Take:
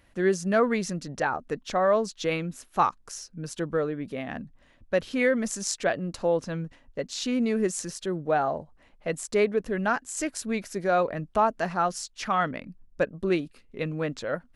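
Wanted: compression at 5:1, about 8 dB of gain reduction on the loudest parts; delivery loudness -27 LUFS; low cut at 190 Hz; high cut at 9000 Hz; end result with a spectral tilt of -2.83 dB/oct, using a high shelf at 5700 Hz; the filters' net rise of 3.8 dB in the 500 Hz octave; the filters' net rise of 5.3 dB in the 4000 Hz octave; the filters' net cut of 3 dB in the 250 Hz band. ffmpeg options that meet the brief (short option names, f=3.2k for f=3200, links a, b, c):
-af "highpass=190,lowpass=9k,equalizer=f=250:t=o:g=-4,equalizer=f=500:t=o:g=5.5,equalizer=f=4k:t=o:g=3,highshelf=f=5.7k:g=9,acompressor=threshold=-24dB:ratio=5,volume=3dB"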